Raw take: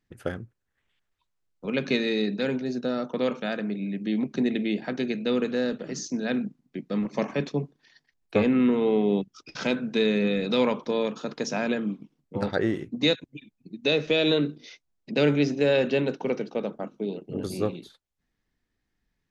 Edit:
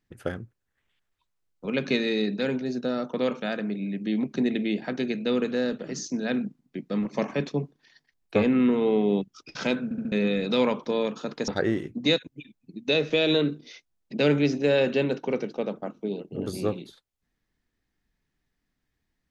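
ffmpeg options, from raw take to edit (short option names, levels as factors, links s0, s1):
-filter_complex "[0:a]asplit=6[s0][s1][s2][s3][s4][s5];[s0]atrim=end=9.912[s6];[s1]atrim=start=9.838:end=9.912[s7];[s2]atrim=start=9.838:end=9.912[s8];[s3]atrim=start=9.838:end=9.912[s9];[s4]atrim=start=10.118:end=11.482[s10];[s5]atrim=start=12.448[s11];[s6][s7]acrossfade=d=0.004:c1=hsin:c2=hsin[s12];[s12][s8]acrossfade=d=0.004:c1=hsin:c2=hsin[s13];[s13][s9]acrossfade=d=0.004:c1=hsin:c2=hsin[s14];[s14][s10]acrossfade=d=0.004:c1=hsin:c2=hsin[s15];[s15][s11]acrossfade=d=0.004:c1=hsin:c2=hsin"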